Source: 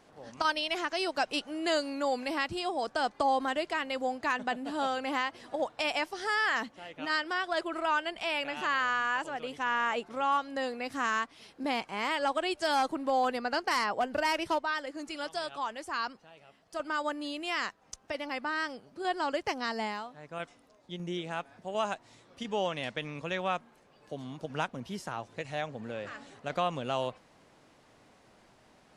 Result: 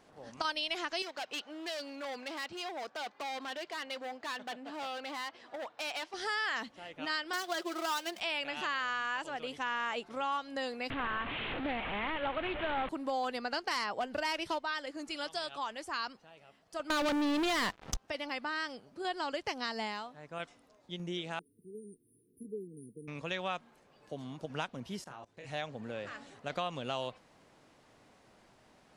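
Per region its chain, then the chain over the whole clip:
1.02–6.14 s: distance through air 110 m + overload inside the chain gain 33 dB + high-pass 540 Hz 6 dB/octave
7.33–8.20 s: dead-time distortion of 0.11 ms + steep high-pass 160 Hz 72 dB/octave + comb 5.6 ms, depth 47%
10.90–12.89 s: one-bit delta coder 16 kbps, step -30 dBFS + bass shelf 68 Hz +11.5 dB + loudspeaker Doppler distortion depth 0.29 ms
16.90–17.97 s: tilt EQ -3 dB/octave + waveshaping leveller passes 5
21.39–23.08 s: brick-wall FIR band-stop 470–8900 Hz + tilt EQ +2.5 dB/octave
25.04–25.49 s: doubling 29 ms -6 dB + level held to a coarse grid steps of 23 dB
whole clip: dynamic bell 3.8 kHz, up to +6 dB, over -48 dBFS, Q 0.98; compression 2:1, threshold -32 dBFS; trim -2 dB

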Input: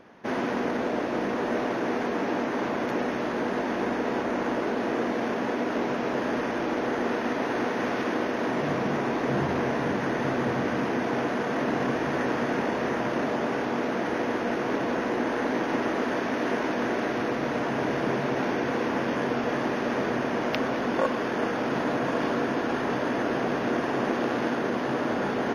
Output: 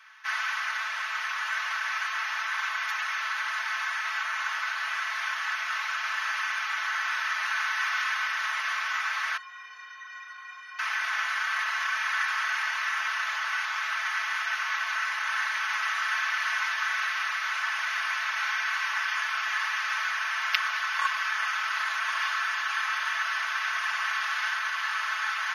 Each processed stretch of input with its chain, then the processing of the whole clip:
9.37–10.79 s: low-pass 3.1 kHz 6 dB/octave + inharmonic resonator 220 Hz, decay 0.32 s, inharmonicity 0.03
whole clip: steep high-pass 1.2 kHz 36 dB/octave; comb 4.6 ms, depth 93%; trim +4.5 dB

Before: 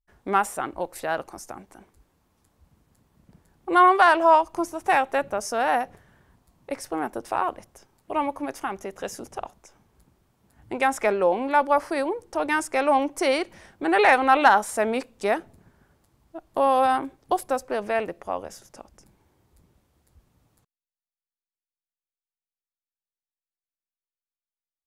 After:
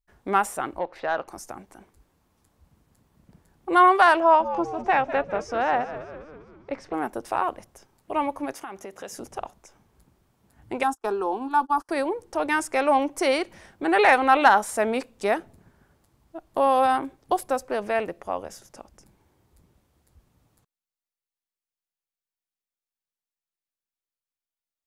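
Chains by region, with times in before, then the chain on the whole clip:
0.79–1.28 s: distance through air 260 m + overdrive pedal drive 10 dB, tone 5.5 kHz, clips at -14.5 dBFS
4.20–6.94 s: distance through air 170 m + frequency-shifting echo 200 ms, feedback 55%, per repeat -100 Hz, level -12.5 dB
8.53–9.17 s: high-pass 170 Hz 6 dB/octave + compression 3:1, threshold -34 dBFS
10.83–11.89 s: gate -29 dBFS, range -43 dB + upward compressor, threshold -28 dBFS + static phaser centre 570 Hz, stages 6
whole clip: none

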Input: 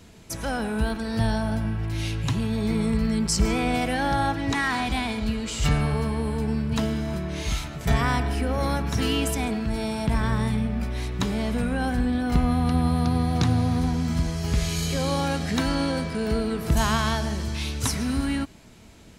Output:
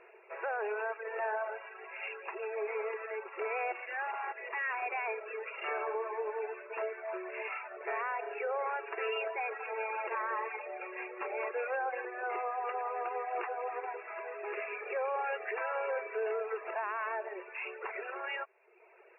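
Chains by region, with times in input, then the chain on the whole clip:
3.72–4.83 s: peaking EQ 490 Hz -8 dB 2.1 oct + hard clipper -30 dBFS
9.38–12.05 s: comb 3.7 ms + delay 215 ms -9.5 dB
whole clip: FFT band-pass 350–2800 Hz; reverb removal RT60 1 s; peak limiter -26.5 dBFS

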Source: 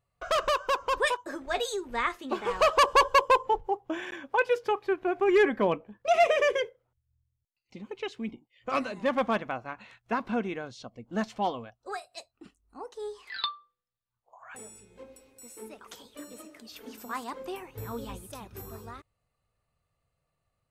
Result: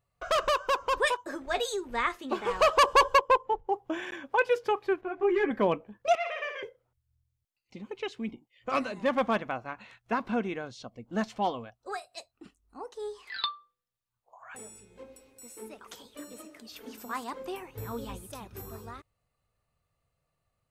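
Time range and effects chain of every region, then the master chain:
3.17–3.69 s: treble shelf 3.7 kHz -10 dB + upward expansion, over -35 dBFS
5.01–5.51 s: low-pass 1.9 kHz 6 dB/octave + three-phase chorus
6.15–6.63 s: high-pass 1.3 kHz + tape spacing loss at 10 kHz 31 dB + flutter echo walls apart 9.9 m, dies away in 0.59 s
whole clip: none

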